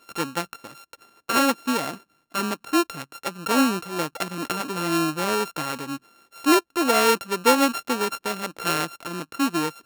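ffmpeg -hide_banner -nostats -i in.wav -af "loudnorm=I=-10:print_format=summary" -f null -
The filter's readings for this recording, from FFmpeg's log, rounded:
Input Integrated:    -23.7 LUFS
Input True Peak:      -5.7 dBTP
Input LRA:             3.5 LU
Input Threshold:     -34.1 LUFS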